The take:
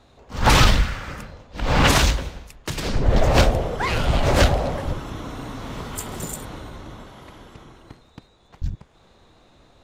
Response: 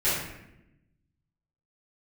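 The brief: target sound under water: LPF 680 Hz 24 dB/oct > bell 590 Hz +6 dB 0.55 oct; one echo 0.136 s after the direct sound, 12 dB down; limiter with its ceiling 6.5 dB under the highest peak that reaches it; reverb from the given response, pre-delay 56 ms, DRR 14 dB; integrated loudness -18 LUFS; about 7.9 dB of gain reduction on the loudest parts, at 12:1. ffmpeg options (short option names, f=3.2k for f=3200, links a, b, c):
-filter_complex "[0:a]acompressor=threshold=-18dB:ratio=12,alimiter=limit=-16.5dB:level=0:latency=1,aecho=1:1:136:0.251,asplit=2[a][b];[1:a]atrim=start_sample=2205,adelay=56[c];[b][c]afir=irnorm=-1:irlink=0,volume=-27dB[d];[a][d]amix=inputs=2:normalize=0,lowpass=f=680:w=0.5412,lowpass=f=680:w=1.3066,equalizer=f=590:t=o:w=0.55:g=6,volume=11.5dB"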